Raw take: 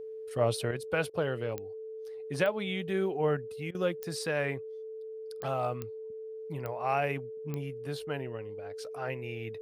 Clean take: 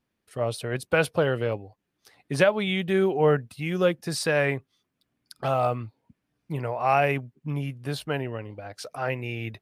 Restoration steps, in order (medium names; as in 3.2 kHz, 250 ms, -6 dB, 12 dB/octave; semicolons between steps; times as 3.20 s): de-click; band-stop 440 Hz, Q 30; interpolate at 1.10/3.71 s, 36 ms; gain correction +8 dB, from 0.71 s